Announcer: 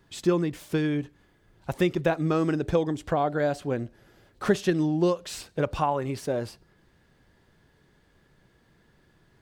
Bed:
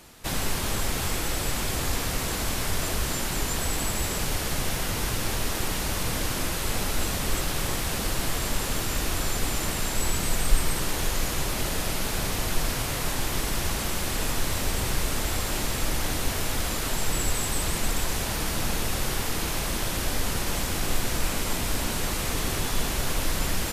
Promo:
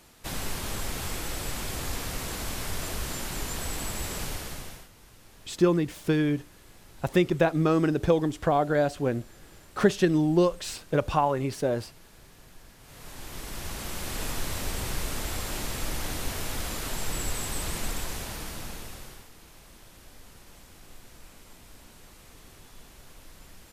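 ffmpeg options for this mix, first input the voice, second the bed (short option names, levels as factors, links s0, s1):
-filter_complex "[0:a]adelay=5350,volume=1.19[s0];[1:a]volume=5.96,afade=t=out:st=4.23:d=0.66:silence=0.0944061,afade=t=in:st=12.8:d=1.42:silence=0.0891251,afade=t=out:st=17.81:d=1.48:silence=0.11885[s1];[s0][s1]amix=inputs=2:normalize=0"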